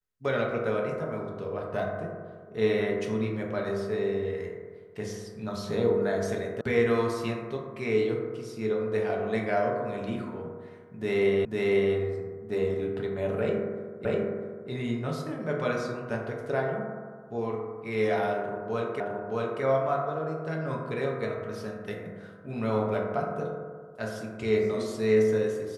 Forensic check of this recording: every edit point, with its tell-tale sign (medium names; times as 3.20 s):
6.61 s: sound stops dead
11.45 s: repeat of the last 0.5 s
14.05 s: repeat of the last 0.65 s
19.00 s: repeat of the last 0.62 s